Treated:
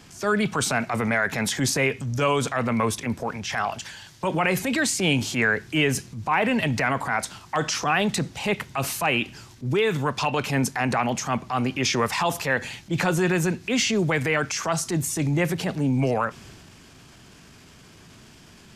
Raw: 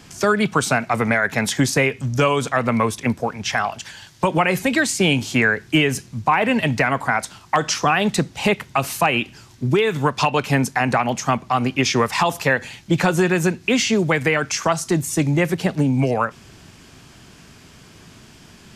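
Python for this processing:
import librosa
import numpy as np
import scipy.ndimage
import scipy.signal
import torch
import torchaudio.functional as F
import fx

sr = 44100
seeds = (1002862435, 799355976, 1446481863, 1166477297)

y = fx.transient(x, sr, attack_db=-7, sustain_db=4)
y = y * librosa.db_to_amplitude(-3.5)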